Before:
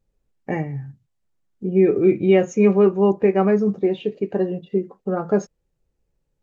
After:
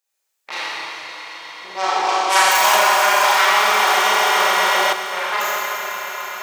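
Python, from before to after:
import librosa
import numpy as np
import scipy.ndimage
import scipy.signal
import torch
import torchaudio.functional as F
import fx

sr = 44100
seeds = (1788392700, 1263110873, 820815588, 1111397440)

y = fx.self_delay(x, sr, depth_ms=0.96)
y = scipy.signal.sosfilt(scipy.signal.butter(2, 870.0, 'highpass', fs=sr, output='sos'), y)
y = fx.tilt_eq(y, sr, slope=3.5)
y = fx.echo_swell(y, sr, ms=132, loudest=5, wet_db=-14)
y = fx.rev_schroeder(y, sr, rt60_s=3.0, comb_ms=29, drr_db=-9.0)
y = fx.band_squash(y, sr, depth_pct=100, at=(2.73, 4.93))
y = y * 10.0 ** (-1.5 / 20.0)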